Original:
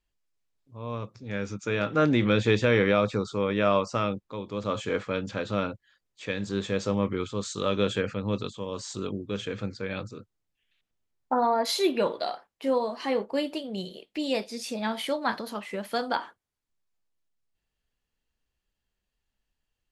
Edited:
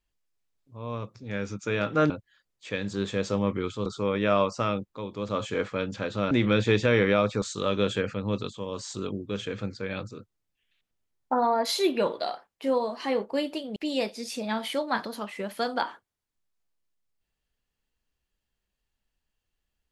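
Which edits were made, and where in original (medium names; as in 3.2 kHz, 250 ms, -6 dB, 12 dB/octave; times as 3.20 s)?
2.10–3.21 s: swap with 5.66–7.42 s
13.76–14.10 s: delete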